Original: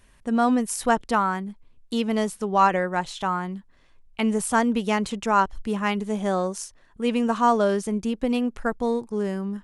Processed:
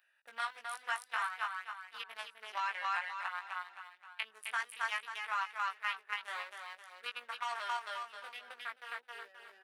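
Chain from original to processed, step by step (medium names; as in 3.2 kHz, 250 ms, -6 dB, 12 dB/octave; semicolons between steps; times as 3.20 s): local Wiener filter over 41 samples; Bessel high-pass 2 kHz, order 4; peaking EQ 6.9 kHz -13 dB 0.84 oct; feedback delay 264 ms, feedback 33%, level -3 dB; level held to a coarse grid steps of 9 dB; chorus 0.56 Hz, delay 16.5 ms, depth 2 ms; three bands compressed up and down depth 40%; trim +6 dB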